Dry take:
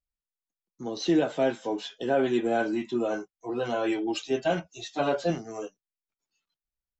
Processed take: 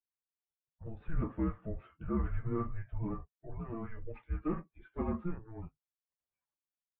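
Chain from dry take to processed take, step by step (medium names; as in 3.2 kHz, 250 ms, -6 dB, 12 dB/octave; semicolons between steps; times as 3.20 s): 3.53–4.04 s: compression 2.5:1, threshold -30 dBFS, peak gain reduction 4.5 dB; mistuned SSB -340 Hz 170–2100 Hz; trim -8 dB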